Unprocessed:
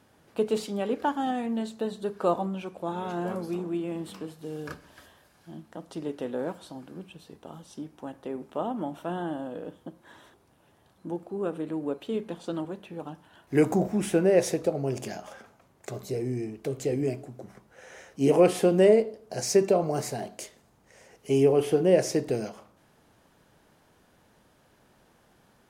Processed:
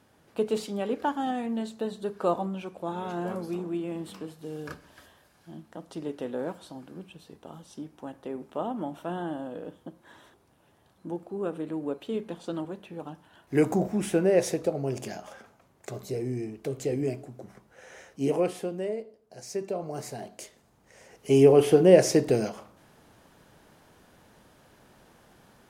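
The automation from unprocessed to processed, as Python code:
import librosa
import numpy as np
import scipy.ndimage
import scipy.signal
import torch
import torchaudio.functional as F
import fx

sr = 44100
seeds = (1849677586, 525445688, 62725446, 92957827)

y = fx.gain(x, sr, db=fx.line((18.06, -1.0), (18.83, -13.5), (19.39, -13.5), (20.07, -5.5), (21.53, 4.5)))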